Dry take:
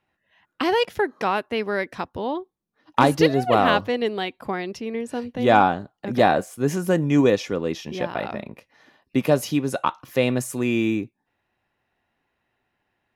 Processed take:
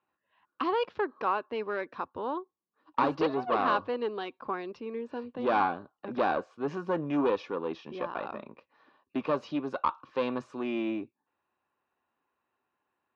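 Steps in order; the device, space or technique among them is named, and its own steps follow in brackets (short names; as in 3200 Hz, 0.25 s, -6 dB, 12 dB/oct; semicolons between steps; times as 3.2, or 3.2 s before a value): guitar amplifier (tube stage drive 15 dB, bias 0.45; tone controls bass -5 dB, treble -7 dB; speaker cabinet 93–4300 Hz, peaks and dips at 120 Hz -8 dB, 190 Hz -4 dB, 690 Hz -5 dB, 1100 Hz +8 dB, 2000 Hz -10 dB, 3200 Hz -5 dB); gain -4 dB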